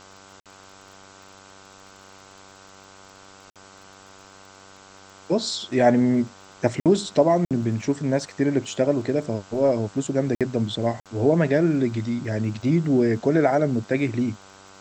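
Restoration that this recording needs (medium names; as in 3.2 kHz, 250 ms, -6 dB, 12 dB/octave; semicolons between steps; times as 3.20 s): de-click; de-hum 96.5 Hz, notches 16; interpolate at 0.40/3.50/6.80/7.45/10.35/11.00 s, 57 ms; noise reduction 19 dB, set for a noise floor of -48 dBFS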